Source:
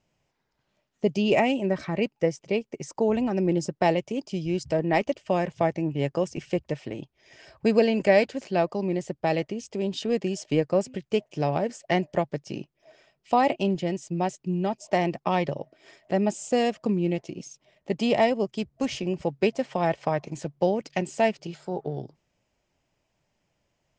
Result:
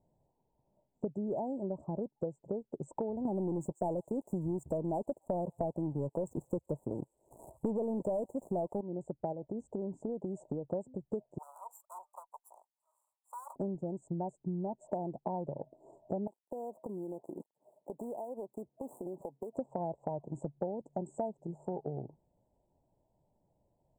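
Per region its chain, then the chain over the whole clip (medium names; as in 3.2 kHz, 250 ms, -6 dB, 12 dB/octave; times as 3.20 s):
3.25–8.81 s: treble shelf 5.8 kHz +11 dB + waveshaping leveller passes 3 + feedback echo behind a high-pass 141 ms, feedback 48%, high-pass 3.2 kHz, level -15 dB
9.32–10.71 s: treble shelf 6.8 kHz -7.5 dB + compression 2.5:1, threshold -29 dBFS
11.38–13.56 s: comb filter that takes the minimum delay 0.69 ms + inverse Chebyshev high-pass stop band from 300 Hz, stop band 60 dB + treble shelf 7.7 kHz +5 dB
16.27–19.57 s: dead-time distortion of 0.14 ms + high-pass 330 Hz + compression 20:1, threshold -36 dBFS
whole clip: Chebyshev band-stop 950–7700 Hz, order 5; treble shelf 4.7 kHz -10.5 dB; compression 6:1, threshold -35 dBFS; trim +1 dB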